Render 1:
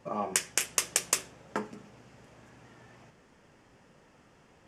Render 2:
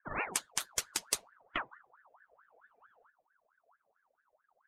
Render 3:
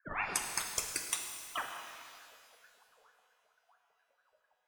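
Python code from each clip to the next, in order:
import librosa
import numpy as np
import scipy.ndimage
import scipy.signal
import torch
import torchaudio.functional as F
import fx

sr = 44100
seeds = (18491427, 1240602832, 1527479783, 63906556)

y1 = fx.bin_expand(x, sr, power=2.0)
y1 = fx.low_shelf(y1, sr, hz=200.0, db=9.5)
y1 = fx.ring_lfo(y1, sr, carrier_hz=1100.0, swing_pct=50, hz=4.5)
y2 = fx.spec_dropout(y1, sr, seeds[0], share_pct=39)
y2 = fx.rev_shimmer(y2, sr, seeds[1], rt60_s=2.0, semitones=12, shimmer_db=-8, drr_db=2.5)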